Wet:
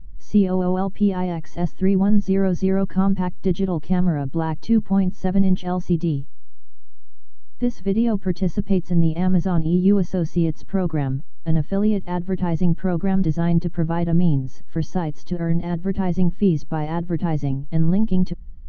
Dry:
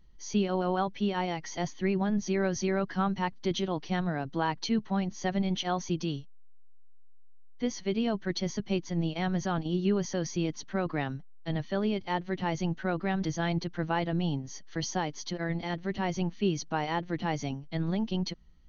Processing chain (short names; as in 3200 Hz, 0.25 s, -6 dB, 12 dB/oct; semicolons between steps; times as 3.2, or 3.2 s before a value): tilt -4.5 dB/oct; gain +1 dB